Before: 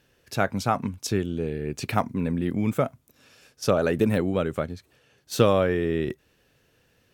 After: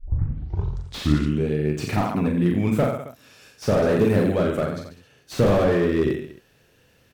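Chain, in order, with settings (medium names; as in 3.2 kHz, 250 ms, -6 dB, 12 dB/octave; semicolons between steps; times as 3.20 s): tape start-up on the opening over 1.48 s; reverse bouncing-ball echo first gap 40 ms, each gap 1.15×, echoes 5; slew-rate limiter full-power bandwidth 60 Hz; trim +3 dB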